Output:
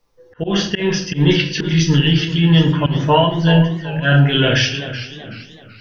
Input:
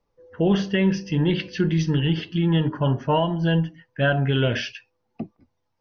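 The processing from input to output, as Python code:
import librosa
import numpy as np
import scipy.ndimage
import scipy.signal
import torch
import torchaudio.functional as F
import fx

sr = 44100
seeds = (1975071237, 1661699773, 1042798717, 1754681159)

y = fx.high_shelf(x, sr, hz=2000.0, db=11.5)
y = fx.room_shoebox(y, sr, seeds[0], volume_m3=49.0, walls='mixed', distance_m=0.49)
y = fx.auto_swell(y, sr, attack_ms=135.0)
y = fx.echo_warbled(y, sr, ms=381, feedback_pct=40, rate_hz=2.8, cents=110, wet_db=-12.5)
y = F.gain(torch.from_numpy(y), 3.0).numpy()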